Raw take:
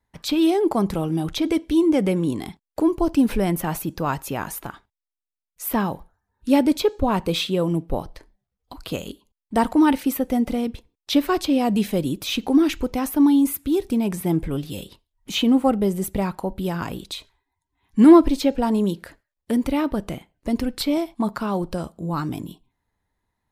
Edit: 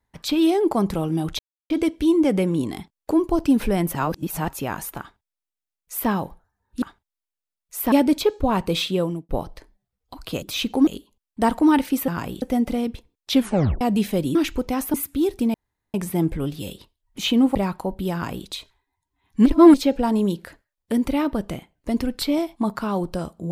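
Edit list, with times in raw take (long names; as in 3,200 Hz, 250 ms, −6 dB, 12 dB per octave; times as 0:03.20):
0:01.39: splice in silence 0.31 s
0:03.64–0:04.17: reverse
0:04.69–0:05.79: duplicate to 0:06.51
0:07.58–0:07.88: fade out
0:11.14: tape stop 0.47 s
0:12.15–0:12.60: move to 0:09.01
0:13.19–0:13.45: remove
0:14.05: splice in room tone 0.40 s
0:15.66–0:16.14: remove
0:16.72–0:17.06: duplicate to 0:10.22
0:18.05–0:18.33: reverse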